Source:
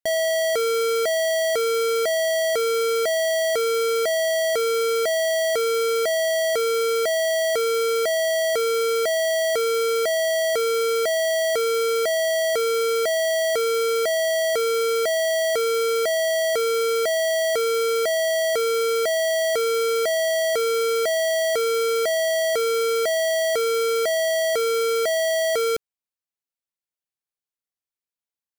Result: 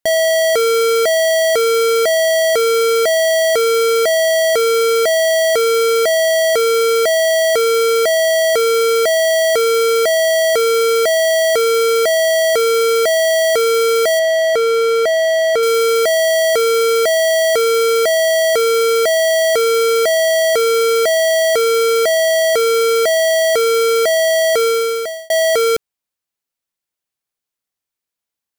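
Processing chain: 14.19–15.63 s: treble shelf 5.5 kHz -11.5 dB; 24.65–25.30 s: fade out; trim +8 dB

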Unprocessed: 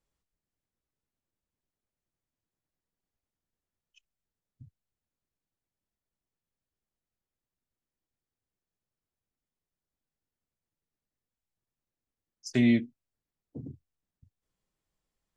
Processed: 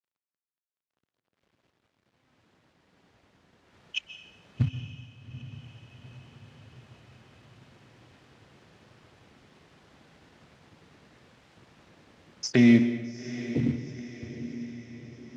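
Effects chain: recorder AGC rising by 6.9 dB/s; de-hum 257.8 Hz, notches 9; in parallel at -1 dB: peak limiter -25 dBFS, peak gain reduction 10.5 dB; on the sum: companded quantiser 6-bit; band-pass 100–3300 Hz; on a send: echo that smears into a reverb 826 ms, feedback 53%, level -12.5 dB; on the sum: plate-style reverb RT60 1.3 s, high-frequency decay 0.75×, pre-delay 115 ms, DRR 11 dB; trim +3 dB

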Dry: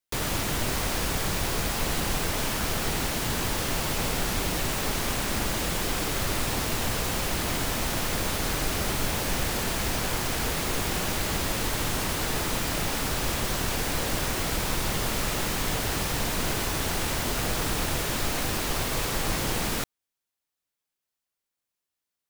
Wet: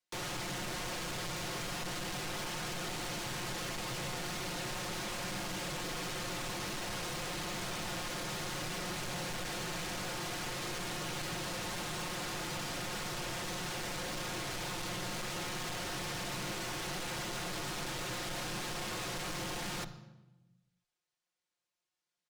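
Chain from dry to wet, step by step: low-pass 7.3 kHz 12 dB/octave; bass shelf 130 Hz -8 dB; comb 5.5 ms, depth 76%; frequency shift -19 Hz; saturation -35.5 dBFS, distortion -7 dB; on a send: reverberation RT60 1.1 s, pre-delay 47 ms, DRR 12.5 dB; on the sum: trim -2 dB

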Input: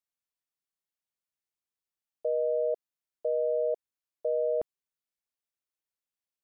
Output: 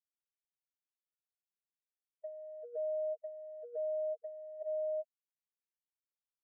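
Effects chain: delay 402 ms -10 dB; loudest bins only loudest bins 1; compressor with a negative ratio -42 dBFS, ratio -1; expander -38 dBFS; trim +6.5 dB

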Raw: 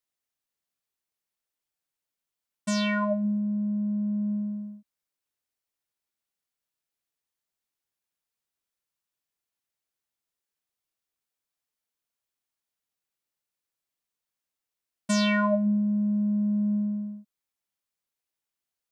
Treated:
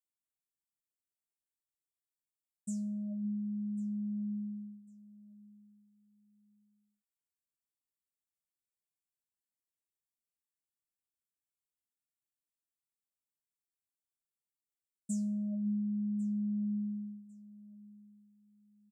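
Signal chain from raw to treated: inverse Chebyshev band-stop 980–3400 Hz, stop band 60 dB; peaking EQ 7.5 kHz +7.5 dB 0.39 oct; on a send: feedback delay 1099 ms, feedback 25%, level -20.5 dB; on the sum: trim -9 dB

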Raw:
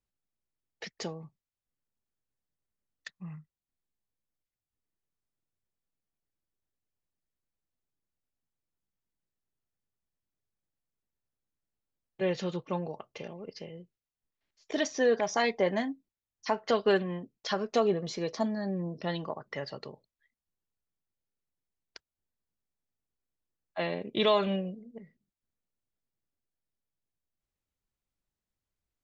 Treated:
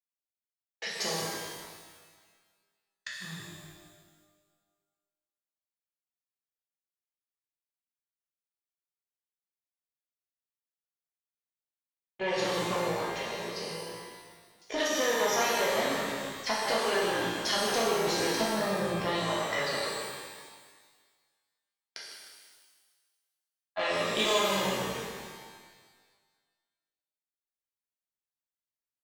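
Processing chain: Chebyshev shaper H 6 -20 dB, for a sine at -13.5 dBFS; in parallel at 0 dB: level held to a coarse grid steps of 13 dB; on the sum: treble shelf 2.4 kHz -10.5 dB; on a send: frequency-shifting echo 153 ms, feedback 45%, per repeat -60 Hz, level -11 dB; on the sum: gate with hold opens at -56 dBFS; tilt EQ +4 dB/octave; compression, threshold -31 dBFS, peak gain reduction 12 dB; pitch-shifted reverb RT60 1.5 s, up +12 st, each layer -8 dB, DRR -6 dB

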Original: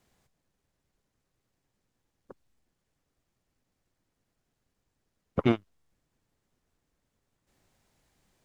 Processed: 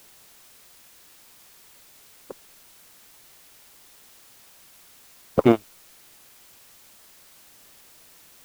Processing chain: in parallel at -11 dB: companded quantiser 4-bit; on the sum: peaking EQ 550 Hz +10.5 dB 2.5 oct; added noise white -51 dBFS; trim -1.5 dB

